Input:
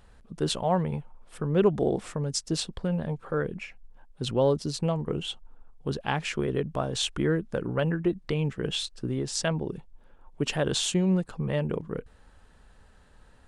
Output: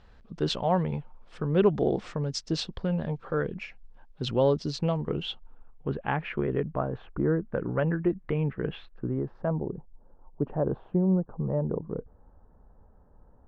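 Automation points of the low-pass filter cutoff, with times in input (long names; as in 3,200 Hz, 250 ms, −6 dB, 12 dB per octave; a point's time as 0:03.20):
low-pass filter 24 dB per octave
0:05.09 5,500 Hz
0:05.96 2,300 Hz
0:06.60 2,300 Hz
0:07.19 1,200 Hz
0:07.63 2,200 Hz
0:08.72 2,200 Hz
0:09.62 1,000 Hz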